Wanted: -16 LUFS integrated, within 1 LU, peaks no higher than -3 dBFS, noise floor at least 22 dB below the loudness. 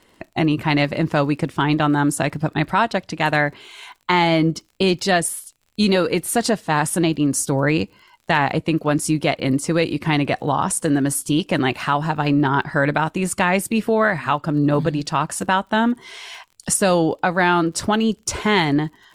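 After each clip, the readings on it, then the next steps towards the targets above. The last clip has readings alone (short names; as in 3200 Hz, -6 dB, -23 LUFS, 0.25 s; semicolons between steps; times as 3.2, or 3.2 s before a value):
ticks 51/s; loudness -19.5 LUFS; peak -3.0 dBFS; loudness target -16.0 LUFS
-> de-click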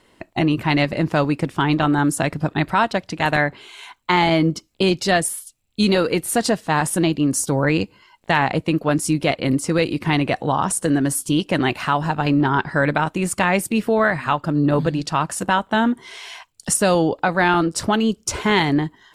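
ticks 0.052/s; loudness -20.0 LUFS; peak -3.0 dBFS; loudness target -16.0 LUFS
-> gain +4 dB; limiter -3 dBFS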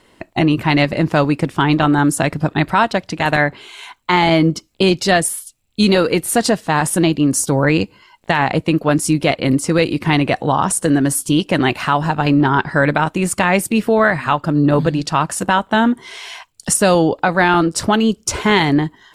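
loudness -16.0 LUFS; peak -3.0 dBFS; noise floor -55 dBFS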